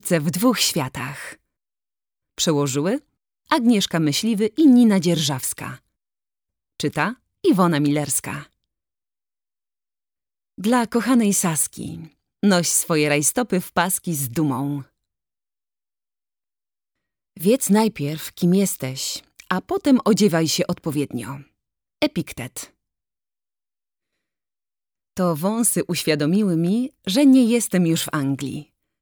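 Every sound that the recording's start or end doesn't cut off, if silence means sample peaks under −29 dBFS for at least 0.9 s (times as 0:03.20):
0:02.38–0:05.74
0:06.80–0:08.42
0:10.58–0:14.81
0:17.40–0:22.64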